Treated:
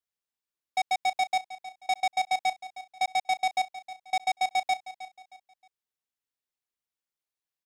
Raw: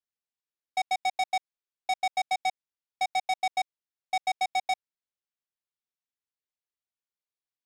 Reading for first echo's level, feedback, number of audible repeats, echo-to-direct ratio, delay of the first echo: -15.0 dB, 34%, 3, -14.5 dB, 313 ms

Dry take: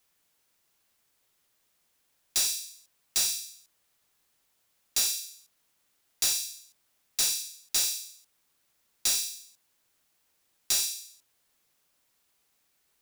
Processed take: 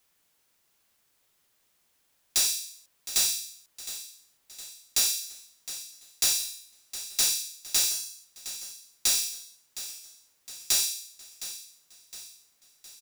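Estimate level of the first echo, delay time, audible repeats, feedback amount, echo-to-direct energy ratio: -13.5 dB, 713 ms, 4, 51%, -12.0 dB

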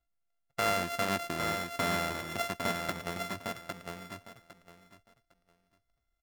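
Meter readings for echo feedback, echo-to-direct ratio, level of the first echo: 20%, -4.5 dB, -4.5 dB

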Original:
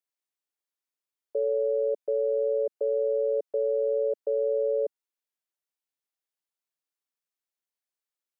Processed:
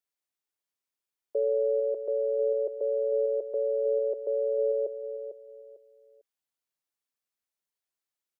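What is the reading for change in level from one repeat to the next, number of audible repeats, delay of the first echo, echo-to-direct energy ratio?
-11.5 dB, 3, 449 ms, -9.5 dB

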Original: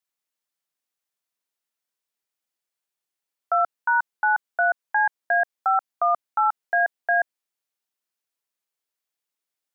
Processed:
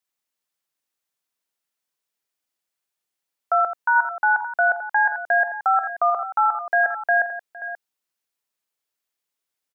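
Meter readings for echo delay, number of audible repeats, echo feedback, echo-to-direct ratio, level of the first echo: 84 ms, 3, no regular repeats, -8.5 dB, -10.5 dB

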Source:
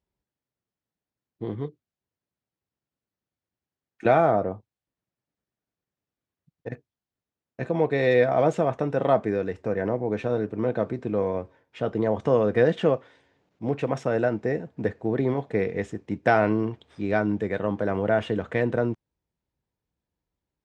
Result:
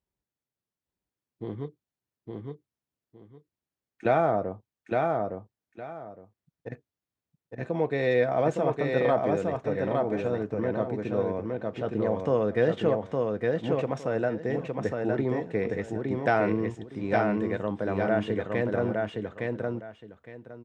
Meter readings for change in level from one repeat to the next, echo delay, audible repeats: -13.5 dB, 862 ms, 2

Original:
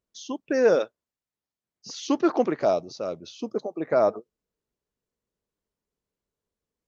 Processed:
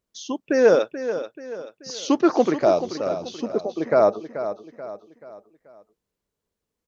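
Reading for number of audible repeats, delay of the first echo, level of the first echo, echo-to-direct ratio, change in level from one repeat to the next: 4, 433 ms, -11.0 dB, -10.0 dB, -7.5 dB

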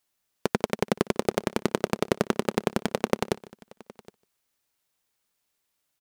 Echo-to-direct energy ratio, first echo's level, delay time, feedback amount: -19.5 dB, -23.0 dB, 150 ms, no regular repeats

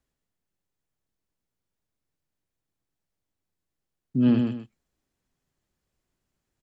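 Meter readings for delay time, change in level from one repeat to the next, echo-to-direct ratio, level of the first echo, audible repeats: 127 ms, -10.5 dB, -4.5 dB, -5.0 dB, 2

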